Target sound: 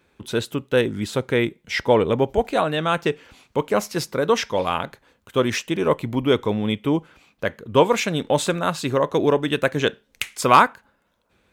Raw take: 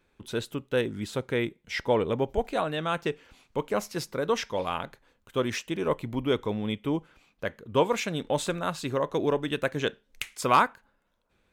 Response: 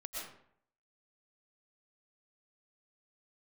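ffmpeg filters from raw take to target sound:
-af "highpass=53,volume=7.5dB"

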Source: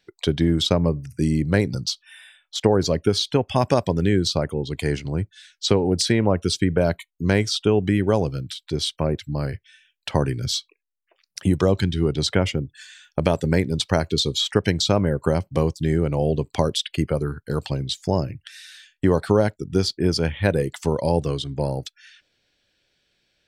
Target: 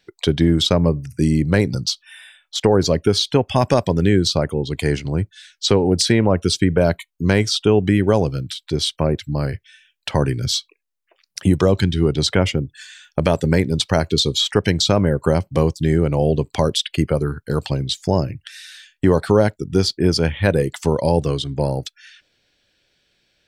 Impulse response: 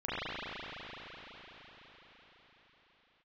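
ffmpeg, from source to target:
-af "apsyclip=8dB,volume=-4dB"

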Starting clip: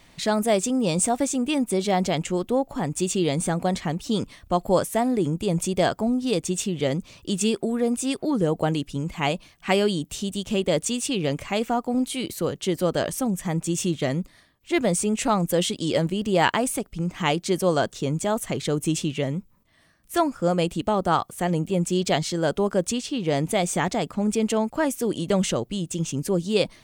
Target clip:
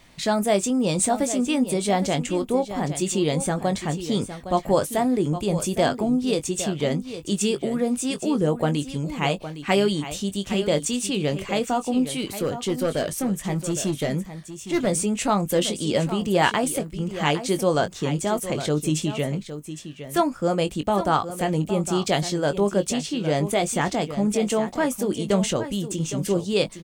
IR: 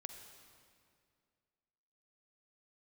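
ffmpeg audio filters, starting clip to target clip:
-filter_complex "[0:a]asettb=1/sr,asplit=3[link_01][link_02][link_03];[link_01]atrim=end=12.184[link_04];[link_02]atrim=start=12.18:end=14.87,asetpts=PTS-STARTPTS,afade=type=in:duration=0.004:curve=qsin,afade=type=out:start_time=2.686:duration=0.004:curve=qsin,volume=18.5dB,asoftclip=hard,volume=-18.5dB[link_05];[link_03]atrim=start=14.866[link_06];[link_04][link_05]acrossfade=duration=0.004:curve1=hsin:curve2=qsin[link_07];[link_07][link_06]acrossfade=duration=0.004:curve1=qsin:curve2=hsin,asplit=2[link_08][link_09];[link_09]adelay=20,volume=-10dB[link_10];[link_08][link_10]amix=inputs=2:normalize=0,aecho=1:1:812:0.266"

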